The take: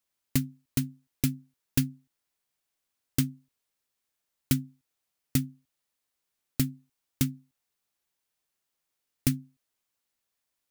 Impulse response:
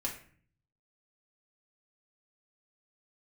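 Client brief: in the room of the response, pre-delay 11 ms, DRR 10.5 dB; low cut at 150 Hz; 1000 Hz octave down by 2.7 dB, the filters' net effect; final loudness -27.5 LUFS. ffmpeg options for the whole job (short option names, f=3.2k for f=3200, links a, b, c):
-filter_complex "[0:a]highpass=150,equalizer=f=1k:t=o:g=-4,asplit=2[a][b];[1:a]atrim=start_sample=2205,adelay=11[c];[b][c]afir=irnorm=-1:irlink=0,volume=-13dB[d];[a][d]amix=inputs=2:normalize=0,volume=5dB"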